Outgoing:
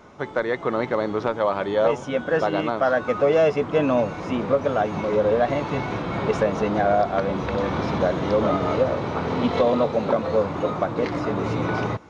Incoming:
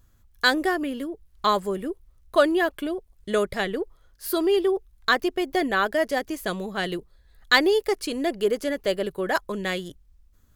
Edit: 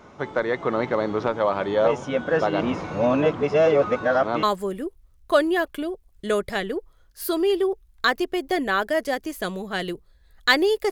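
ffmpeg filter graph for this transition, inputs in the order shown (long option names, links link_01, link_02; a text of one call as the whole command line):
ffmpeg -i cue0.wav -i cue1.wav -filter_complex "[0:a]apad=whole_dur=10.91,atrim=end=10.91,asplit=2[link_01][link_02];[link_01]atrim=end=2.612[link_03];[link_02]atrim=start=2.608:end=4.432,asetpts=PTS-STARTPTS,areverse[link_04];[1:a]atrim=start=1.468:end=7.95[link_05];[link_03][link_04]acrossfade=duration=0.004:curve1=hsin:curve2=hsin[link_06];[link_06][link_05]acrossfade=duration=0.004:curve1=hsin:curve2=hsin" out.wav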